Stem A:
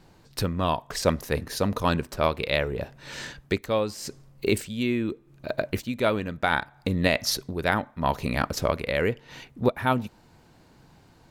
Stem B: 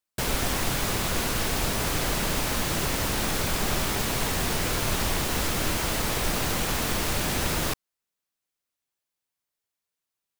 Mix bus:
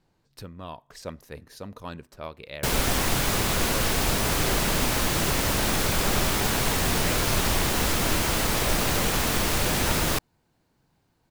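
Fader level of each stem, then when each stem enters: −14.0, +2.5 decibels; 0.00, 2.45 seconds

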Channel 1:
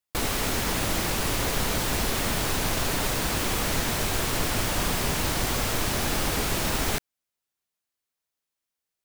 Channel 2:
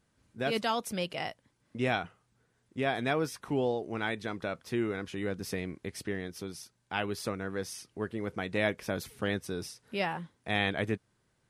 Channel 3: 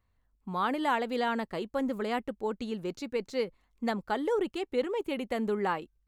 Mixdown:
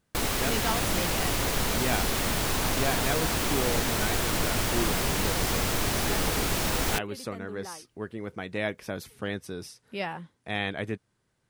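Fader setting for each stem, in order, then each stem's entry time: −1.0, −1.0, −12.5 decibels; 0.00, 0.00, 2.00 seconds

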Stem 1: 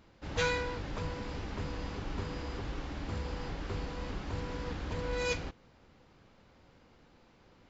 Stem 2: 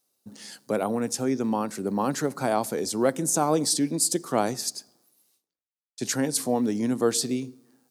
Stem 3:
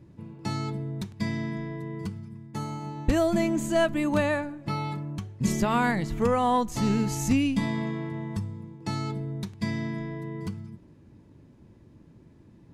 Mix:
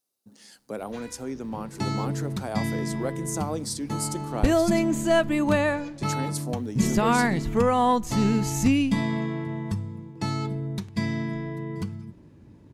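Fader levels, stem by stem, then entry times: −15.0, −8.0, +2.5 decibels; 0.55, 0.00, 1.35 seconds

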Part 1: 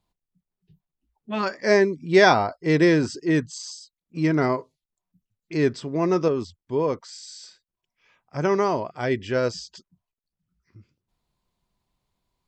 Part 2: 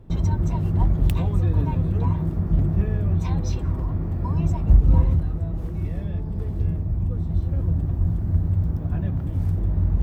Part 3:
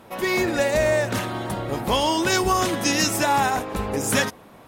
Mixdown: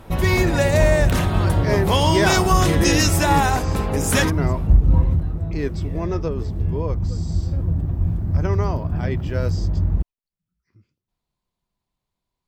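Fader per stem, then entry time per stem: −5.0, +1.0, +1.5 decibels; 0.00, 0.00, 0.00 seconds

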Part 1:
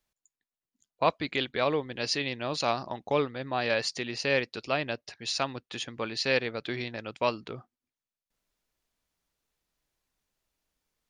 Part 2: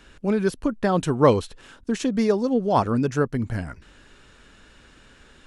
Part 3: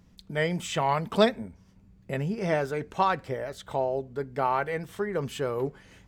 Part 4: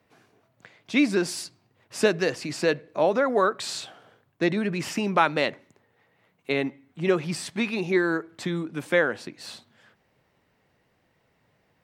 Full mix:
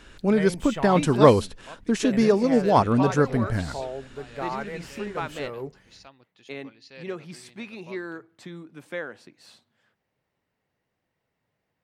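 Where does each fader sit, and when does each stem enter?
−19.5, +1.5, −5.5, −11.5 decibels; 0.65, 0.00, 0.00, 0.00 seconds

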